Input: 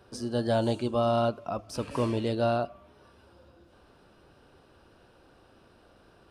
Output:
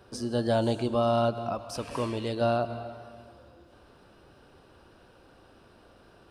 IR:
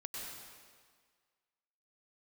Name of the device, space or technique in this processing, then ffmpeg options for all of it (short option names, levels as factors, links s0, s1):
ducked reverb: -filter_complex "[0:a]asplit=3[s0][s1][s2];[1:a]atrim=start_sample=2205[s3];[s1][s3]afir=irnorm=-1:irlink=0[s4];[s2]apad=whole_len=278028[s5];[s4][s5]sidechaincompress=threshold=0.0178:ratio=8:attack=26:release=109,volume=0.473[s6];[s0][s6]amix=inputs=2:normalize=0,asettb=1/sr,asplit=3[s7][s8][s9];[s7]atrim=end=1.554[s10];[s8]atrim=start=1.55:end=2.41,asetpts=PTS-STARTPTS,afade=t=in:d=0.004:c=qsin,afade=t=out:st=0.856:d=0.004:c=qsin,equalizer=f=170:w=0.31:g=-5[s11];[s9]atrim=start=2.406[s12];[s10][s11]acrossfade=d=0.004:c1=hsin:c2=qsin[s13];[s13][s12]acrossfade=d=0.004:c1=qsin:c2=hsin"